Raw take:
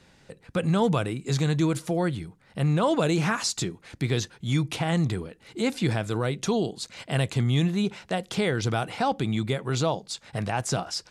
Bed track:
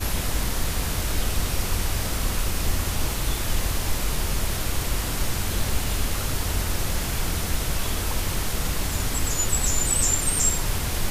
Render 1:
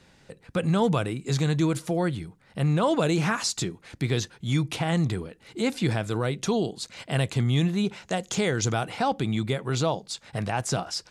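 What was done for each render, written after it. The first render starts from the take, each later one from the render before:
0:08.03–0:08.73: parametric band 6,700 Hz +14.5 dB 0.31 octaves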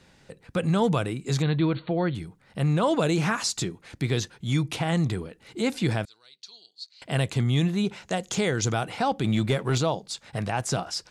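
0:01.42–0:02.15: linear-phase brick-wall low-pass 4,500 Hz
0:06.05–0:07.02: resonant band-pass 4,400 Hz, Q 8.1
0:09.24–0:09.78: leveller curve on the samples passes 1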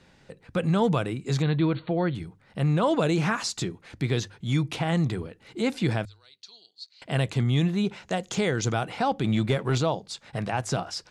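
high-shelf EQ 7,100 Hz −8.5 dB
mains-hum notches 50/100 Hz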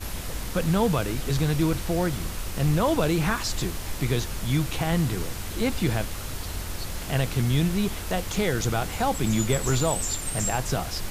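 mix in bed track −7.5 dB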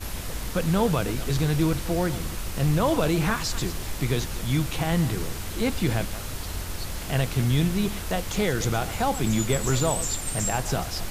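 delay that plays each chunk backwards 138 ms, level −13.5 dB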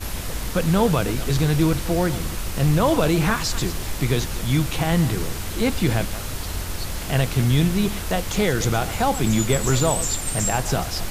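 level +4 dB

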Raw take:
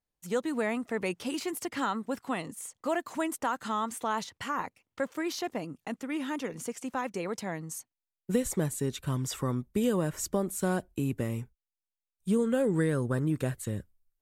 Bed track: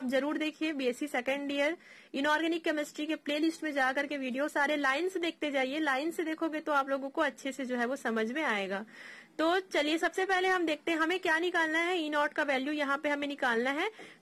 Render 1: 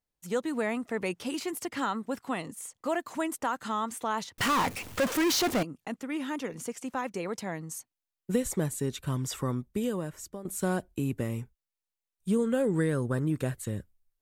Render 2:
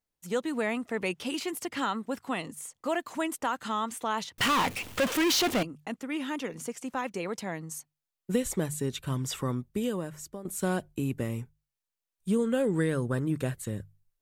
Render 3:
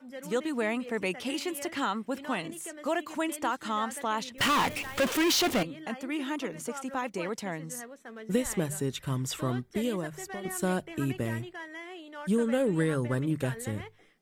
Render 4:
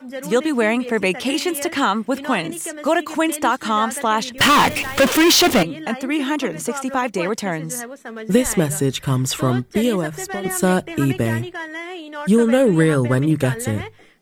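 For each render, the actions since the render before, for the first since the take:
0:04.38–0:05.63: power curve on the samples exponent 0.35; 0:09.49–0:10.45: fade out, to −15 dB
mains-hum notches 50/100/150 Hz; dynamic equaliser 3,000 Hz, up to +5 dB, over −48 dBFS, Q 1.6
mix in bed track −13 dB
level +12 dB

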